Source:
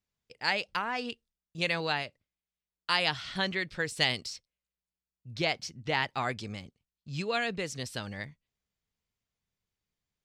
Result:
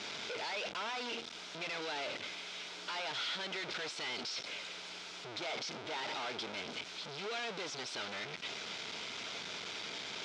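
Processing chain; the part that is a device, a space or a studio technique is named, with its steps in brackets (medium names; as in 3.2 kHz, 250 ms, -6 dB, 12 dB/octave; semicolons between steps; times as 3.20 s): home computer beeper (one-bit comparator; cabinet simulation 530–4600 Hz, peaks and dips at 530 Hz -7 dB, 780 Hz -6 dB, 1.1 kHz -9 dB, 1.8 kHz -10 dB, 2.8 kHz -5 dB, 4.4 kHz -5 dB); trim +4 dB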